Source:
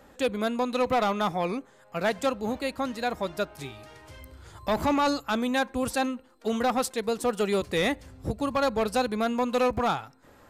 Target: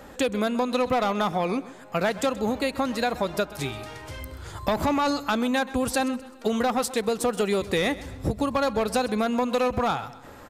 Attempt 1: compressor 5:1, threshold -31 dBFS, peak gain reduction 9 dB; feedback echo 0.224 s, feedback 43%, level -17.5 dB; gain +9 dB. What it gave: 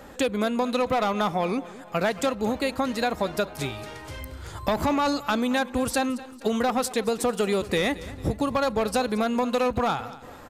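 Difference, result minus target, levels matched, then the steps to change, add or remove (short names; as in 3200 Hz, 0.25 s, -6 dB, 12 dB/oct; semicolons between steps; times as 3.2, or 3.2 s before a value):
echo 95 ms late
change: feedback echo 0.129 s, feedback 43%, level -17.5 dB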